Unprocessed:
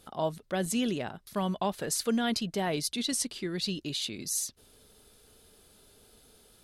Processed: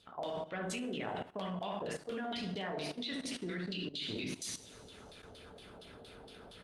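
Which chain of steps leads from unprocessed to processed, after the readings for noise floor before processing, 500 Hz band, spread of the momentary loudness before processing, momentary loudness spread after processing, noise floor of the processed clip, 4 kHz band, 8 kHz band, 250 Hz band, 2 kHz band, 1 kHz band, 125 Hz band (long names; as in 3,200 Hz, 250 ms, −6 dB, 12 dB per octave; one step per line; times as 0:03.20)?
−61 dBFS, −6.5 dB, 5 LU, 15 LU, −55 dBFS, −7.0 dB, −14.0 dB, −8.5 dB, −4.0 dB, −6.5 dB, −7.0 dB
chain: in parallel at −10 dB: dead-zone distortion −48.5 dBFS
on the sum: ambience of single reflections 28 ms −9 dB, 67 ms −4 dB
auto-filter low-pass saw down 4.3 Hz 590–4,100 Hz
coupled-rooms reverb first 0.57 s, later 1.9 s, DRR 2 dB
harmonic and percussive parts rebalanced percussive +7 dB
reversed playback
downward compressor 16 to 1, threshold −33 dBFS, peak gain reduction 19.5 dB
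reversed playback
high-pass filter 57 Hz 12 dB per octave
parametric band 9,800 Hz +9.5 dB 1.1 octaves
output level in coarse steps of 14 dB
level +3.5 dB
Opus 48 kbit/s 48,000 Hz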